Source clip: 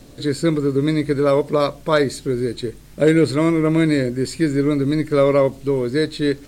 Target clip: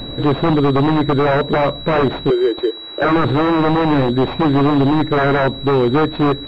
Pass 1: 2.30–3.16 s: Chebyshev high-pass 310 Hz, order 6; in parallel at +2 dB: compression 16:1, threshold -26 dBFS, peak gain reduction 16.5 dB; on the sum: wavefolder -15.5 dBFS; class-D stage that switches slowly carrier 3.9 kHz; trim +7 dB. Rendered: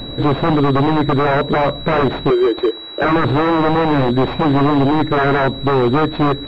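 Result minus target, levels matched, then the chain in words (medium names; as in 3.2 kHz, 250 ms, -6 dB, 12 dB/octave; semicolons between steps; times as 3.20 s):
compression: peak gain reduction -8.5 dB
2.30–3.16 s: Chebyshev high-pass 310 Hz, order 6; in parallel at +2 dB: compression 16:1, threshold -35 dBFS, peak gain reduction 25 dB; on the sum: wavefolder -15.5 dBFS; class-D stage that switches slowly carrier 3.9 kHz; trim +7 dB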